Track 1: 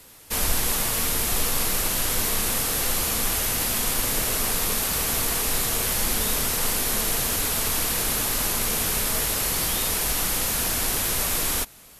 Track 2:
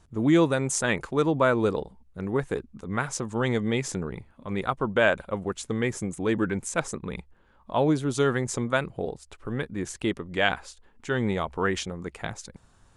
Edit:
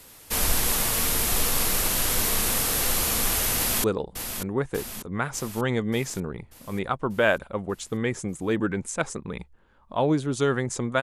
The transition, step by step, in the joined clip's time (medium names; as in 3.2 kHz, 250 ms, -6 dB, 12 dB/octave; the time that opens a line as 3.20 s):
track 1
3.56–3.84 s: echo throw 590 ms, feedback 60%, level -8 dB
3.84 s: go over to track 2 from 1.62 s